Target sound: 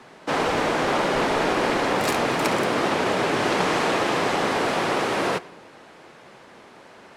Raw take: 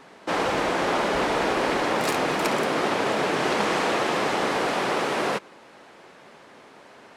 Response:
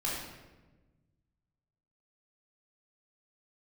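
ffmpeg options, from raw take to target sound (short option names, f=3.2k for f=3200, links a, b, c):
-filter_complex "[0:a]afreqshift=-25,asplit=2[a][b];[1:a]atrim=start_sample=2205,adelay=35[c];[b][c]afir=irnorm=-1:irlink=0,volume=-24.5dB[d];[a][d]amix=inputs=2:normalize=0,volume=1.5dB"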